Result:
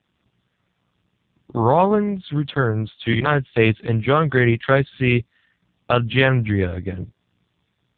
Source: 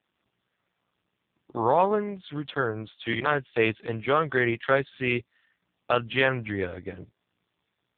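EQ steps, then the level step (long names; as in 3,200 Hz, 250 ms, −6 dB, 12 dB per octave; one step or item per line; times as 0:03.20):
high-frequency loss of the air 80 metres
bass and treble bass +11 dB, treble +10 dB
+5.0 dB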